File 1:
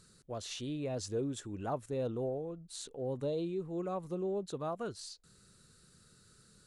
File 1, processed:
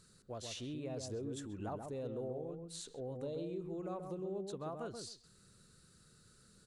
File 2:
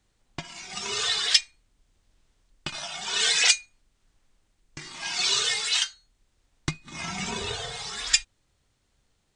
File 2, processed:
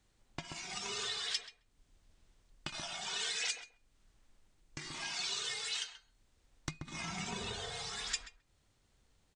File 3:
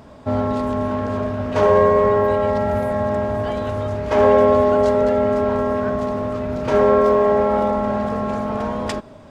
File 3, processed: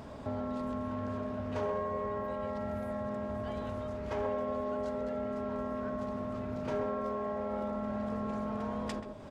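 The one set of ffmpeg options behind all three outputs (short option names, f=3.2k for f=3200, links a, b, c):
-filter_complex "[0:a]acompressor=threshold=-39dB:ratio=2.5,asplit=2[a][b];[b]adelay=132,lowpass=f=900:p=1,volume=-4dB,asplit=2[c][d];[d]adelay=132,lowpass=f=900:p=1,volume=0.17,asplit=2[e][f];[f]adelay=132,lowpass=f=900:p=1,volume=0.17[g];[c][e][g]amix=inputs=3:normalize=0[h];[a][h]amix=inputs=2:normalize=0,volume=-2.5dB"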